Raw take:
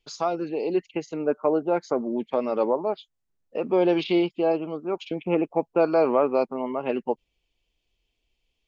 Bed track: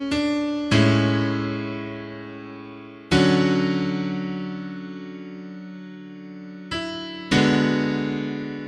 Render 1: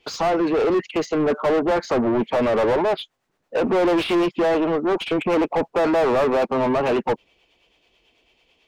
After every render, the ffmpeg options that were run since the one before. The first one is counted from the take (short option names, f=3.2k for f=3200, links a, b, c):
-filter_complex "[0:a]acrossover=split=440[a][b];[a]aeval=exprs='val(0)*(1-0.5/2+0.5/2*cos(2*PI*9.1*n/s))':c=same[c];[b]aeval=exprs='val(0)*(1-0.5/2-0.5/2*cos(2*PI*9.1*n/s))':c=same[d];[c][d]amix=inputs=2:normalize=0,asplit=2[e][f];[f]highpass=f=720:p=1,volume=34dB,asoftclip=type=tanh:threshold=-11.5dB[g];[e][g]amix=inputs=2:normalize=0,lowpass=f=1.2k:p=1,volume=-6dB"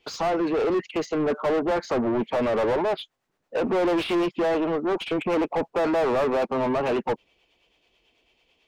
-af "volume=-4dB"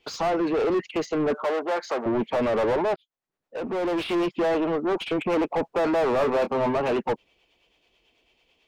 -filter_complex "[0:a]asettb=1/sr,asplit=3[a][b][c];[a]atrim=end=1.444[d];[b]atrim=start=1.44:end=2.06,asetpts=PTS-STARTPTS,afade=t=in:d=0.004:c=qsin,afade=t=out:st=0.616:d=0.004:c=qsin,highpass=470[e];[c]atrim=start=2.056[f];[d][e]acrossfade=d=0.004:c1=hsin:c2=qsin[g];[g][f]acrossfade=d=0.004:c1=qsin:c2=hsin,asettb=1/sr,asplit=3[h][i][j];[h]atrim=end=6.164[k];[i]atrim=start=6.16:end=6.77,asetpts=PTS-STARTPTS,afade=t=in:d=0.004:c=qsin,afade=t=out:st=0.606:d=0.004:c=qsin,asplit=2[l][m];[m]adelay=25,volume=-8dB[n];[l][n]amix=inputs=2:normalize=0,atrim=end_sample=26901[o];[j]atrim=start=6.766[p];[k][o]acrossfade=d=0.004:c1=hsin:c2=qsin[q];[q][p]acrossfade=d=0.004:c1=qsin:c2=hsin,asplit=2[r][s];[r]atrim=end=2.96,asetpts=PTS-STARTPTS,afade=t=out:st=2.956:d=0.004:c=hsin[t];[s]atrim=start=2.96,asetpts=PTS-STARTPTS,afade=t=in:d=1.37[u];[t][u]concat=n=2:v=0:a=1"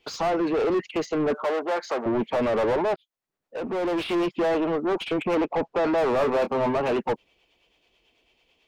-filter_complex "[0:a]asettb=1/sr,asplit=3[a][b][c];[a]atrim=end=5.354[d];[b]atrim=start=5.35:end=5.98,asetpts=PTS-STARTPTS,afade=t=in:d=0.004:c=qsin,afade=t=out:st=0.626:d=0.004:c=qsin,lowpass=5.8k[e];[c]atrim=start=5.976[f];[d][e]acrossfade=d=0.004:c1=hsin:c2=qsin[g];[g][f]acrossfade=d=0.004:c1=qsin:c2=hsin"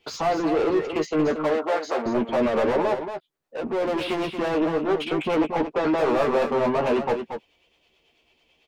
-filter_complex "[0:a]asplit=2[a][b];[b]adelay=13,volume=-6dB[c];[a][c]amix=inputs=2:normalize=0,aecho=1:1:230:0.398"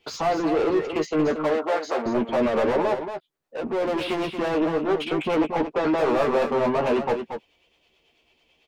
-af anull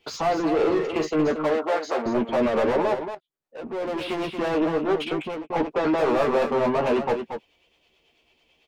-filter_complex "[0:a]asettb=1/sr,asplit=3[a][b][c];[a]atrim=end=0.554[d];[b]atrim=start=0.55:end=1.11,asetpts=PTS-STARTPTS,afade=t=in:d=0.004:c=qsin,afade=t=out:st=0.556:d=0.004:c=qsin,asplit=2[e][f];[f]adelay=42,volume=-7dB[g];[e][g]amix=inputs=2:normalize=0,atrim=end_sample=24696[h];[c]atrim=start=1.106[i];[d][h]acrossfade=d=0.004:c1=hsin:c2=qsin[j];[j][i]acrossfade=d=0.004:c1=qsin:c2=hsin,asplit=3[k][l][m];[k]atrim=end=3.15,asetpts=PTS-STARTPTS,afade=t=out:st=3.146:d=0.004:c=hsin:silence=0.237137[n];[l]atrim=start=3.15:end=5.5,asetpts=PTS-STARTPTS,afade=t=in:d=1.34:silence=0.237137,afade=t=out:st=1.91:d=0.44[o];[m]atrim=start=5.5,asetpts=PTS-STARTPTS,afade=t=in:d=0.004:c=hsin[p];[n][o][p]concat=n=3:v=0:a=1"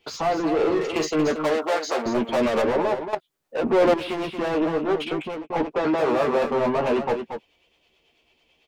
-filter_complex "[0:a]asettb=1/sr,asplit=3[a][b][c];[a]atrim=end=0.814[d];[b]atrim=start=0.81:end=2.62,asetpts=PTS-STARTPTS,afade=t=in:d=0.004:c=qsin,afade=t=out:st=1.806:d=0.004:c=qsin,highshelf=f=3.5k:g=11[e];[c]atrim=start=2.616[f];[d][e]acrossfade=d=0.004:c1=hsin:c2=qsin[g];[g][f]acrossfade=d=0.004:c1=qsin:c2=hsin,asettb=1/sr,asplit=3[h][i][j];[h]atrim=end=5.824[k];[i]atrim=start=5.82:end=6.44,asetpts=PTS-STARTPTS,afade=t=in:d=0.004:c=qsin,afade=t=out:st=0.616:d=0.004:c=qsin,highpass=58[l];[j]atrim=start=6.436[m];[k][l]acrossfade=d=0.004:c1=hsin:c2=qsin[n];[n][m]acrossfade=d=0.004:c1=qsin:c2=hsin,asplit=3[o][p][q];[o]atrim=end=3.132[r];[p]atrim=start=3.128:end=3.942,asetpts=PTS-STARTPTS,volume=11.5dB[s];[q]atrim=start=3.938[t];[r][s]acrossfade=d=0.004:c1=hsin:c2=hsin[u];[u][t]acrossfade=d=0.004:c1=hsin:c2=hsin"